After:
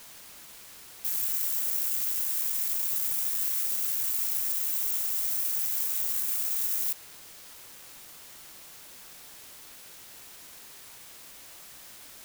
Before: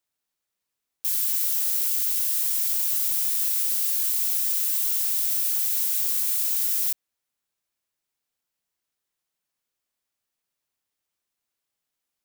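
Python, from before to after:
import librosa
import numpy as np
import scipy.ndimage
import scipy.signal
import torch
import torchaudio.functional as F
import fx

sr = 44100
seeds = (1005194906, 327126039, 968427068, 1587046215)

y = fx.wiener(x, sr, points=15)
y = fx.low_shelf(y, sr, hz=210.0, db=11.5)
y = fx.quant_dither(y, sr, seeds[0], bits=8, dither='triangular')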